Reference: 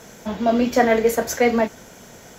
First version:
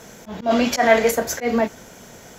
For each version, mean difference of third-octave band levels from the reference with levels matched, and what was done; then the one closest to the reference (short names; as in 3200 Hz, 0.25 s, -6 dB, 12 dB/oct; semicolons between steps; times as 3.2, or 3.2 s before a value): 2.5 dB: spectral gain 0.5–1.11, 550–12000 Hz +8 dB; auto swell 0.118 s; in parallel at -0.5 dB: limiter -11.5 dBFS, peak gain reduction 11.5 dB; on the sum: gain -5 dB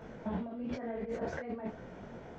10.5 dB: limiter -11.5 dBFS, peak gain reduction 6.5 dB; negative-ratio compressor -28 dBFS, ratio -1; tape spacing loss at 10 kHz 44 dB; detuned doubles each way 34 cents; gain -3.5 dB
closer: first